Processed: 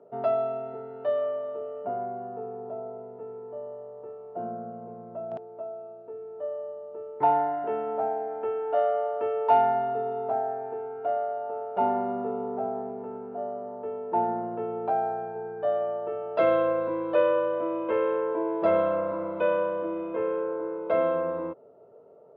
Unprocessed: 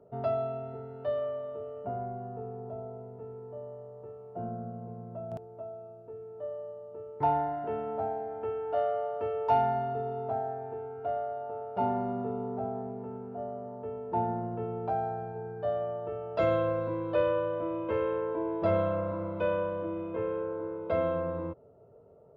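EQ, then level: BPF 280–3200 Hz; +5.0 dB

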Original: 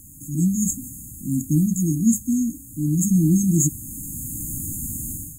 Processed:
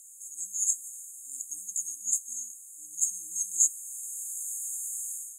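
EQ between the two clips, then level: Butterworth band-pass 5600 Hz, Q 0.84; 0.0 dB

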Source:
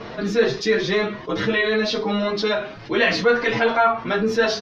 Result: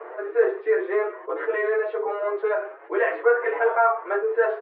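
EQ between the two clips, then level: steep high-pass 360 Hz 72 dB/oct; LPF 1800 Hz 24 dB/oct; air absorption 350 m; 0.0 dB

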